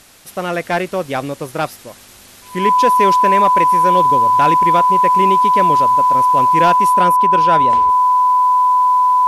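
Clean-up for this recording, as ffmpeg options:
ffmpeg -i in.wav -af "bandreject=frequency=1000:width=30" out.wav

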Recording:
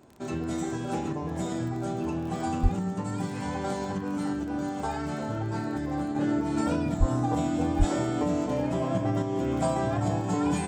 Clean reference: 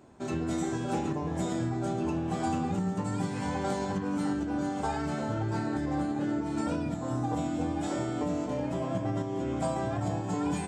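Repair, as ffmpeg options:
ffmpeg -i in.wav -filter_complex "[0:a]adeclick=threshold=4,asplit=3[link_01][link_02][link_03];[link_01]afade=type=out:start_time=2.62:duration=0.02[link_04];[link_02]highpass=frequency=140:width=0.5412,highpass=frequency=140:width=1.3066,afade=type=in:start_time=2.62:duration=0.02,afade=type=out:start_time=2.74:duration=0.02[link_05];[link_03]afade=type=in:start_time=2.74:duration=0.02[link_06];[link_04][link_05][link_06]amix=inputs=3:normalize=0,asplit=3[link_07][link_08][link_09];[link_07]afade=type=out:start_time=6.99:duration=0.02[link_10];[link_08]highpass=frequency=140:width=0.5412,highpass=frequency=140:width=1.3066,afade=type=in:start_time=6.99:duration=0.02,afade=type=out:start_time=7.11:duration=0.02[link_11];[link_09]afade=type=in:start_time=7.11:duration=0.02[link_12];[link_10][link_11][link_12]amix=inputs=3:normalize=0,asplit=3[link_13][link_14][link_15];[link_13]afade=type=out:start_time=7.78:duration=0.02[link_16];[link_14]highpass=frequency=140:width=0.5412,highpass=frequency=140:width=1.3066,afade=type=in:start_time=7.78:duration=0.02,afade=type=out:start_time=7.9:duration=0.02[link_17];[link_15]afade=type=in:start_time=7.9:duration=0.02[link_18];[link_16][link_17][link_18]amix=inputs=3:normalize=0,asetnsamples=nb_out_samples=441:pad=0,asendcmd='6.15 volume volume -4dB',volume=0dB" out.wav

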